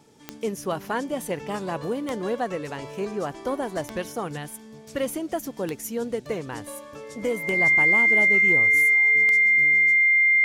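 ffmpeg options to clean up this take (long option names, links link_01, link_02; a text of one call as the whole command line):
ffmpeg -i in.wav -af "adeclick=threshold=4,bandreject=frequency=2100:width=30" out.wav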